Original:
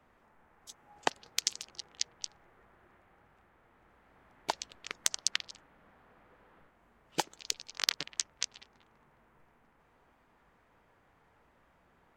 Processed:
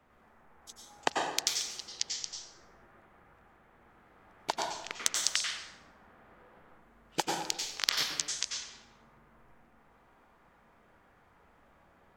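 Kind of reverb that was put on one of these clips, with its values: plate-style reverb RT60 0.94 s, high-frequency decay 0.65×, pre-delay 80 ms, DRR -1 dB

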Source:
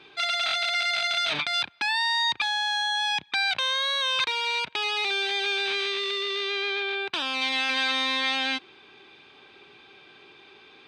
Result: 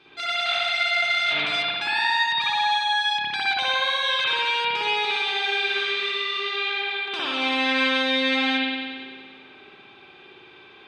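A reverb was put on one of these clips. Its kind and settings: spring tank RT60 1.7 s, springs 57 ms, chirp 45 ms, DRR -8 dB; trim -4.5 dB

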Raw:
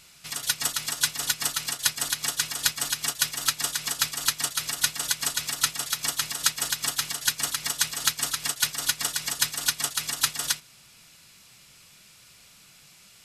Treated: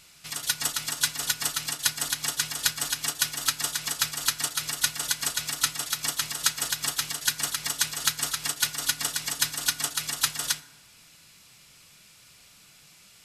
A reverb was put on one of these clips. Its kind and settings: FDN reverb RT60 1.1 s, high-frequency decay 0.5×, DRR 14 dB; trim -1 dB

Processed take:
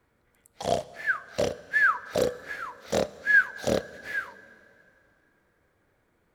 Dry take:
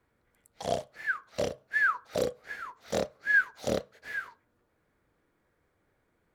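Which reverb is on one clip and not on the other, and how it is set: plate-style reverb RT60 3 s, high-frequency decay 0.9×, DRR 17.5 dB; trim +4 dB

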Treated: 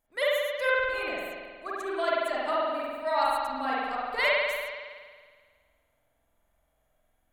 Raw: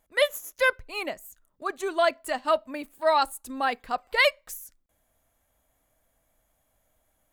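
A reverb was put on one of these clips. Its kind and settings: spring tank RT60 1.7 s, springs 46 ms, chirp 25 ms, DRR -7 dB; trim -9 dB

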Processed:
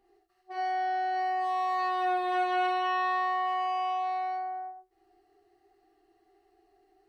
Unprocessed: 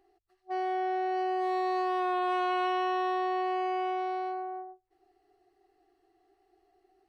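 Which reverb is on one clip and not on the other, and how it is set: gated-style reverb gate 110 ms flat, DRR -4 dB; trim -3 dB

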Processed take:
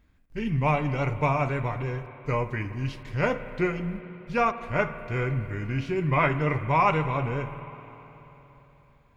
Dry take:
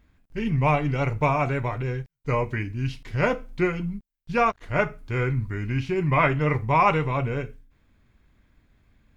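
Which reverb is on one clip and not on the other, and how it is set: spring tank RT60 3.7 s, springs 51/58 ms, chirp 45 ms, DRR 11 dB; trim -2.5 dB

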